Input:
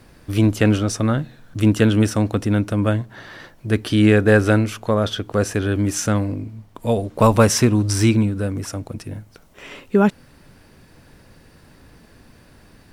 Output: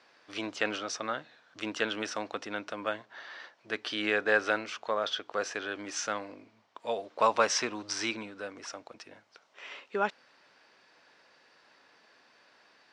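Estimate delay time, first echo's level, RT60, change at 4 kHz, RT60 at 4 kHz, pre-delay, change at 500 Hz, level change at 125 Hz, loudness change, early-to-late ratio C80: none, none, none, -6.0 dB, none, none, -13.0 dB, -36.0 dB, -13.5 dB, none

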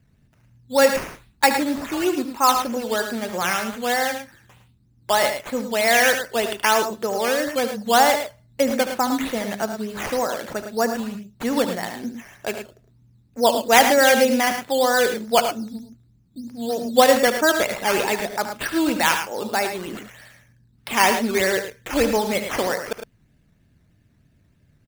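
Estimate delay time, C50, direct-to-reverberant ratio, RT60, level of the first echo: 74 ms, none, none, none, -11.0 dB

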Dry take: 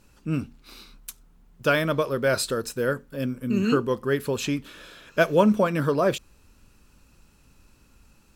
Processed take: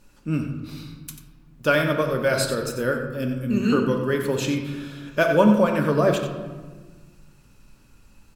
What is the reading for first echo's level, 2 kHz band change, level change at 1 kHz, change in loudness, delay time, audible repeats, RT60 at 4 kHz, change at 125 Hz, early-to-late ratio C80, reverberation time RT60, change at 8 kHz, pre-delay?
-10.0 dB, +2.5 dB, +2.0 dB, +2.0 dB, 91 ms, 1, 0.85 s, +3.5 dB, 6.5 dB, 1.4 s, +1.0 dB, 3 ms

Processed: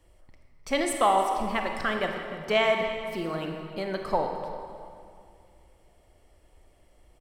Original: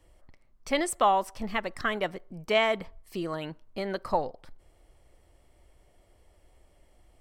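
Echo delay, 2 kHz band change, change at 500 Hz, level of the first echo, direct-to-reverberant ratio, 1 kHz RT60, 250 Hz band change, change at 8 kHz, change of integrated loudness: 0.304 s, +2.0 dB, +2.5 dB, -16.0 dB, 2.5 dB, 2.3 s, +2.0 dB, +1.5 dB, +1.5 dB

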